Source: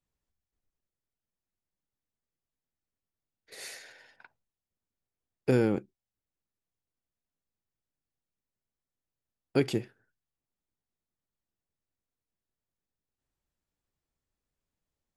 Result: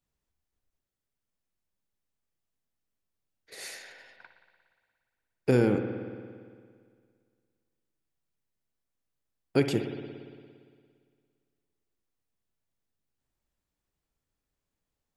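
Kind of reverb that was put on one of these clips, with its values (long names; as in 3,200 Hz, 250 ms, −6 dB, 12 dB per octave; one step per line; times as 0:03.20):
spring reverb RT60 2 s, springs 57 ms, chirp 75 ms, DRR 6.5 dB
level +1.5 dB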